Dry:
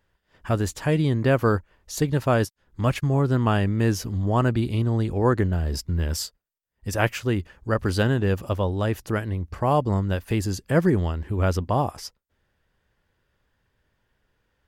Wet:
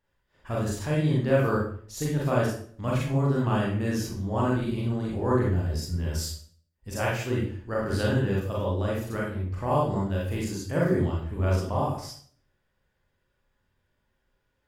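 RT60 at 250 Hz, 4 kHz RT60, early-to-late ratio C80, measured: 0.60 s, 0.45 s, 6.5 dB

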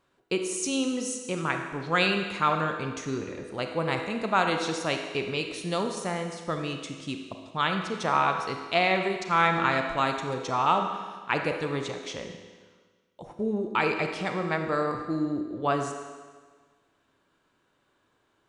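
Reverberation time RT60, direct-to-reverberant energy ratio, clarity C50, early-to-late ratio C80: 1.5 s, 4.0 dB, 5.0 dB, 7.0 dB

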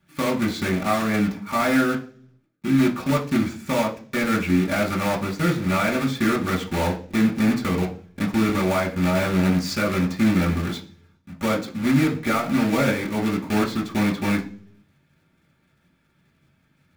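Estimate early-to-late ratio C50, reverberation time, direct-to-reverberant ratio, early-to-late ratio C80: 12.0 dB, 0.45 s, -3.5 dB, 17.0 dB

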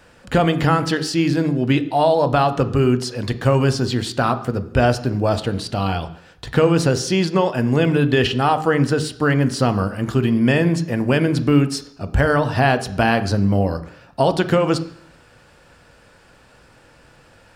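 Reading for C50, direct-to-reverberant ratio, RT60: 14.0 dB, 10.0 dB, 0.70 s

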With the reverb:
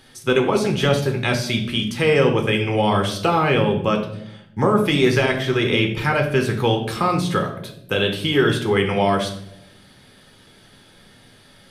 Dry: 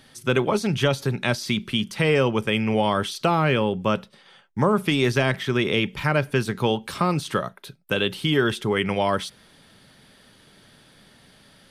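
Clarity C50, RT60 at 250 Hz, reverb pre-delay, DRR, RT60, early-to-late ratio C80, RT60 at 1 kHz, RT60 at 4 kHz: 8.5 dB, 1.2 s, 6 ms, 2.5 dB, 0.75 s, 12.0 dB, 0.60 s, 0.55 s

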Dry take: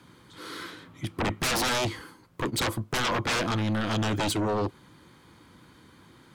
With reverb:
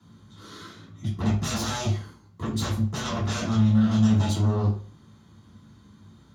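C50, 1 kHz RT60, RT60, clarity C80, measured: 7.0 dB, 0.40 s, 0.45 s, 12.0 dB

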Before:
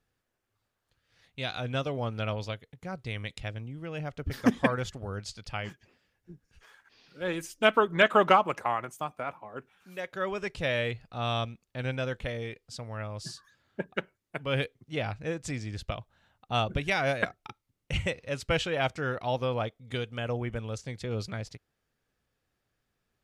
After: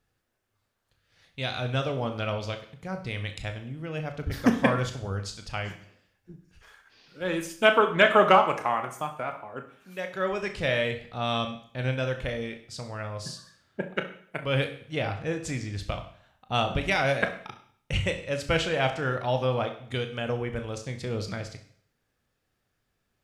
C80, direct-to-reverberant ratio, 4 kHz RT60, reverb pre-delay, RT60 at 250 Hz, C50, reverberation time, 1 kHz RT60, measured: 13.5 dB, 6.0 dB, 0.55 s, 21 ms, 0.55 s, 10.0 dB, 0.60 s, 0.55 s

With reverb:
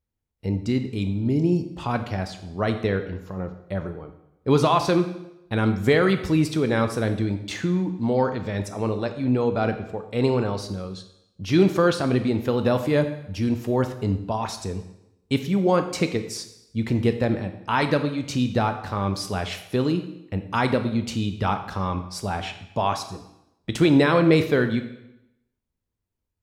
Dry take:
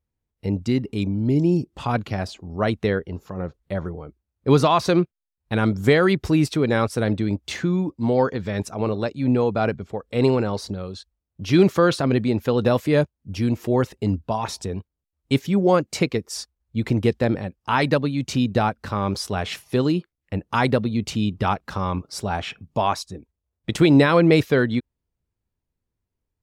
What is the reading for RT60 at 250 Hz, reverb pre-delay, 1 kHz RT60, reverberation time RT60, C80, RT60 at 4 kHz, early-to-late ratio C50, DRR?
0.85 s, 7 ms, 0.85 s, 0.85 s, 12.5 dB, 0.80 s, 10.0 dB, 7.5 dB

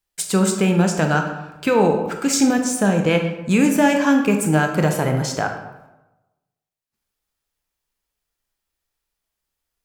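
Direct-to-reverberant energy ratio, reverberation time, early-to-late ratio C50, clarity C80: 3.5 dB, 1.0 s, 6.5 dB, 8.5 dB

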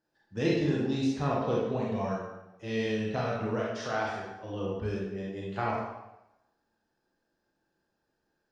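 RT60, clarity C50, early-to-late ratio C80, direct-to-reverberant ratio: 0.90 s, -0.5 dB, 3.5 dB, -4.5 dB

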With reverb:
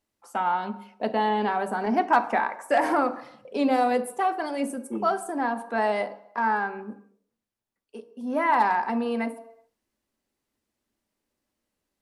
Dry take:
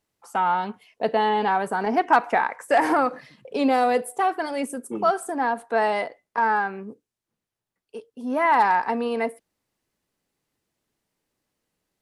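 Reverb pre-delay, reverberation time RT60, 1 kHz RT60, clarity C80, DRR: 3 ms, 0.75 s, 0.75 s, 17.0 dB, 9.0 dB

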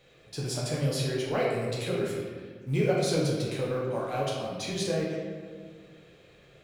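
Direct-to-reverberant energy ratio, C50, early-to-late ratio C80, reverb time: -5.0 dB, 0.5 dB, 2.5 dB, 1.7 s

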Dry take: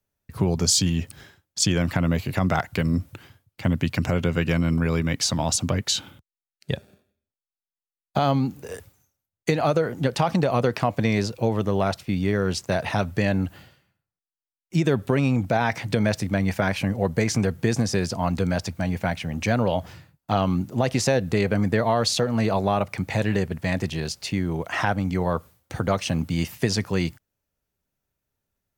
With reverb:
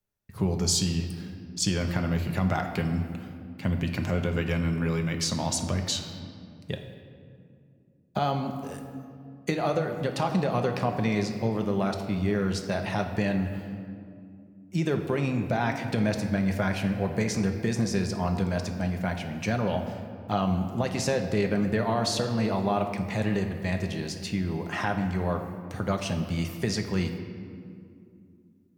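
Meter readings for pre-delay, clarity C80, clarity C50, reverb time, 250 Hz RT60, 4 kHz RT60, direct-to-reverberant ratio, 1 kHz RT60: 5 ms, 8.5 dB, 7.0 dB, 2.5 s, 3.8 s, 1.4 s, 4.0 dB, 2.2 s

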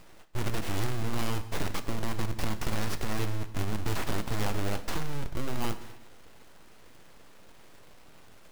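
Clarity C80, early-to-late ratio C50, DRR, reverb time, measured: 14.5 dB, 13.0 dB, 11.0 dB, 1.1 s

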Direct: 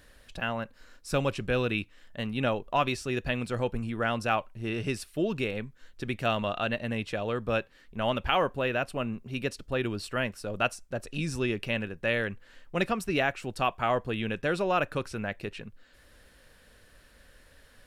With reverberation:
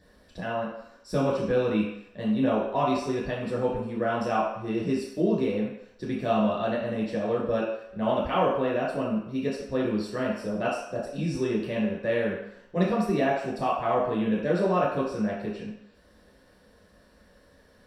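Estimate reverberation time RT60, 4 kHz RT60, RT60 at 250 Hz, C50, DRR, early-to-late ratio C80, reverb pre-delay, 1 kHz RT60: 0.75 s, 0.70 s, 0.55 s, 2.5 dB, -6.5 dB, 5.5 dB, 8 ms, 0.80 s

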